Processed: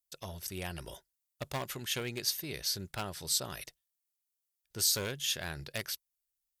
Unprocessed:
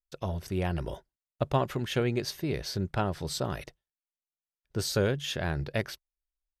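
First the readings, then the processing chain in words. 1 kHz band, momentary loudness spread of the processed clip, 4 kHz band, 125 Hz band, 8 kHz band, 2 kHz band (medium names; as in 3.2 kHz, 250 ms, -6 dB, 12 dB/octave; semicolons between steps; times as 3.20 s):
-9.0 dB, 16 LU, +3.0 dB, -12.0 dB, +7.5 dB, -3.5 dB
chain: one-sided clip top -23 dBFS; pre-emphasis filter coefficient 0.9; trim +8 dB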